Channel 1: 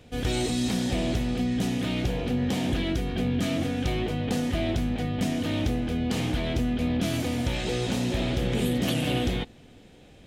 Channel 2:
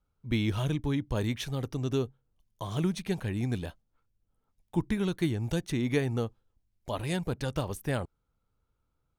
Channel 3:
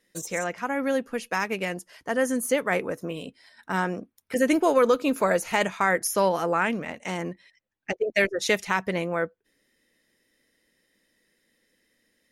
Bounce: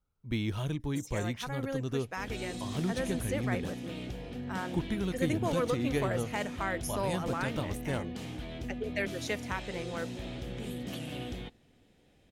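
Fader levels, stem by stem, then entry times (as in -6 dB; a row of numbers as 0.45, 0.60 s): -13.0, -4.0, -11.5 dB; 2.05, 0.00, 0.80 s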